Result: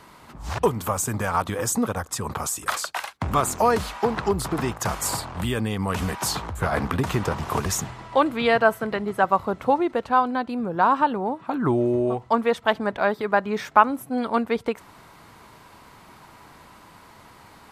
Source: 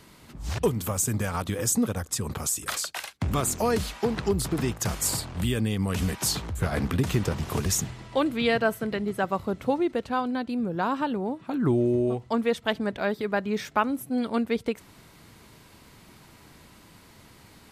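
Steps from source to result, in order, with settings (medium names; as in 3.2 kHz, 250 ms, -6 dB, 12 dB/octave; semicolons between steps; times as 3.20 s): peaking EQ 990 Hz +11.5 dB 1.7 oct; trim -1 dB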